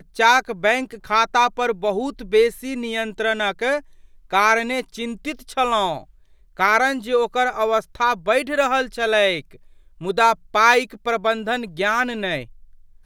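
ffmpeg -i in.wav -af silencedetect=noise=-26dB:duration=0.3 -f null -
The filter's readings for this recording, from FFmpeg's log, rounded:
silence_start: 3.79
silence_end: 4.33 | silence_duration: 0.54
silence_start: 5.98
silence_end: 6.59 | silence_duration: 0.62
silence_start: 9.40
silence_end: 10.02 | silence_duration: 0.62
silence_start: 12.42
silence_end: 13.06 | silence_duration: 0.63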